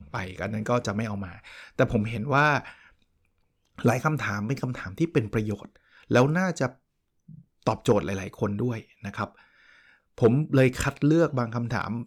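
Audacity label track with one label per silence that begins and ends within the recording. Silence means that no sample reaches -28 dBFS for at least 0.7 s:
2.600000	3.810000	silence
6.670000	7.670000	silence
9.240000	10.180000	silence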